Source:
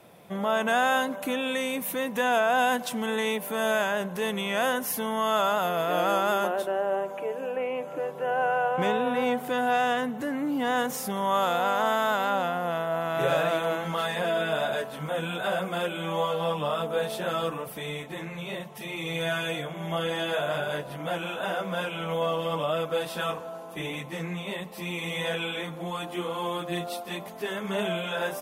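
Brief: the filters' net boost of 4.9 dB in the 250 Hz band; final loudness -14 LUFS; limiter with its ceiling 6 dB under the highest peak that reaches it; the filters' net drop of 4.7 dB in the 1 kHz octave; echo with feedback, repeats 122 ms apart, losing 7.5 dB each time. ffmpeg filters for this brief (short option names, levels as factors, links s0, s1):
-af "equalizer=f=250:t=o:g=6.5,equalizer=f=1000:t=o:g=-7.5,alimiter=limit=0.1:level=0:latency=1,aecho=1:1:122|244|366|488|610:0.422|0.177|0.0744|0.0312|0.0131,volume=5.62"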